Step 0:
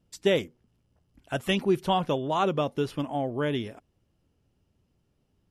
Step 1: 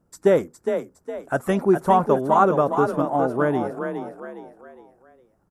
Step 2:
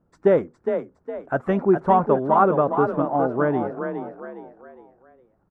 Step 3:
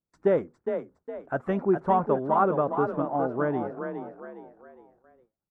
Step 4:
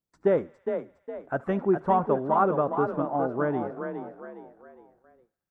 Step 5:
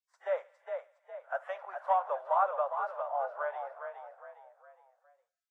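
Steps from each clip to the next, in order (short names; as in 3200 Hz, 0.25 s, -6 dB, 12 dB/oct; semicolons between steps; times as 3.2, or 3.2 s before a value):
EQ curve 110 Hz 0 dB, 160 Hz +4 dB, 1400 Hz +10 dB, 3000 Hz -14 dB, 7800 Hz +3 dB; on a send: frequency-shifting echo 0.411 s, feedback 38%, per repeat +31 Hz, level -7 dB
LPF 2100 Hz 12 dB/oct
gate with hold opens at -45 dBFS; gain -5.5 dB
thinning echo 72 ms, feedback 80%, high-pass 770 Hz, level -22 dB
steep high-pass 550 Hz 72 dB/oct; gain -4 dB; Vorbis 32 kbps 32000 Hz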